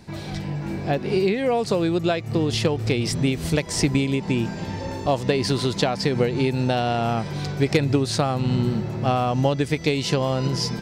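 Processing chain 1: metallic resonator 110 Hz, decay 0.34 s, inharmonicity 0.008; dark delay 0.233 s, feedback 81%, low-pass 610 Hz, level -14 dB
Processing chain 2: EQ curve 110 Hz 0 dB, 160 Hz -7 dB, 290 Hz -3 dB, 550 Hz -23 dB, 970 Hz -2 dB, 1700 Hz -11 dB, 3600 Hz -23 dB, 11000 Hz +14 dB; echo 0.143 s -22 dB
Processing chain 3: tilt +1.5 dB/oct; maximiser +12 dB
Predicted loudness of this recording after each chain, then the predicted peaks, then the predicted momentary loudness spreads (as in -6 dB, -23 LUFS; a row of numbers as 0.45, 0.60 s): -33.0, -28.5, -13.5 LUFS; -16.5, -9.5, -1.0 dBFS; 9, 7, 6 LU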